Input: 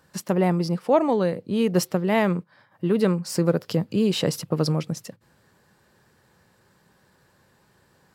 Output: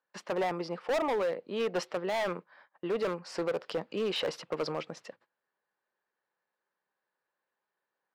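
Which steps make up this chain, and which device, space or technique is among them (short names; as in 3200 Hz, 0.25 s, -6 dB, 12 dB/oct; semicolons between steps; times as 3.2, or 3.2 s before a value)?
walkie-talkie (BPF 530–2900 Hz; hard clip -26 dBFS, distortion -6 dB; gate -58 dBFS, range -22 dB)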